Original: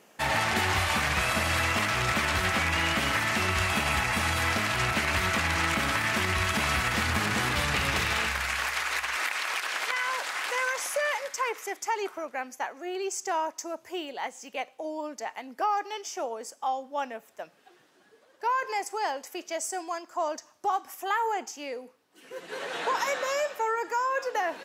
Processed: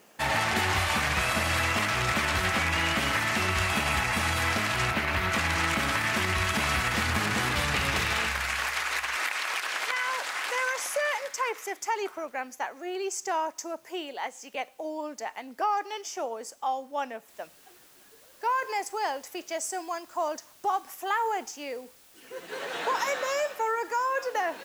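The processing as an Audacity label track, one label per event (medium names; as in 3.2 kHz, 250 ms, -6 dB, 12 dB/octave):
4.920000	5.320000	peaking EQ 7.9 kHz -9.5 dB 1.5 oct
13.850000	14.550000	high-pass 230 Hz
17.290000	17.290000	noise floor step -66 dB -57 dB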